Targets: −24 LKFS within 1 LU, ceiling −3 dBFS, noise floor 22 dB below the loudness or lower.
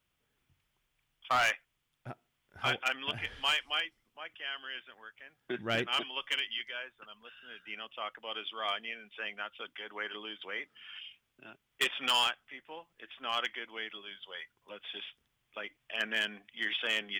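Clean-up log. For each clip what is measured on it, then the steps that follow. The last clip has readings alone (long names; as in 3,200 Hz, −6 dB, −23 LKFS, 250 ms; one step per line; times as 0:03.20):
share of clipped samples 0.4%; peaks flattened at −23.0 dBFS; integrated loudness −34.5 LKFS; sample peak −23.0 dBFS; target loudness −24.0 LKFS
→ clipped peaks rebuilt −23 dBFS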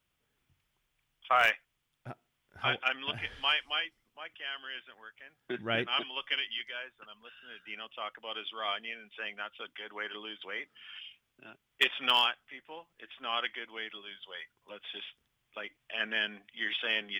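share of clipped samples 0.0%; integrated loudness −33.0 LKFS; sample peak −14.0 dBFS; target loudness −24.0 LKFS
→ level +9 dB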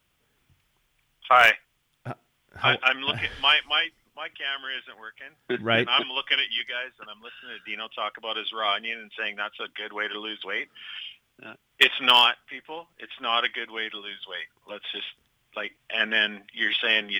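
integrated loudness −24.0 LKFS; sample peak −5.0 dBFS; background noise floor −71 dBFS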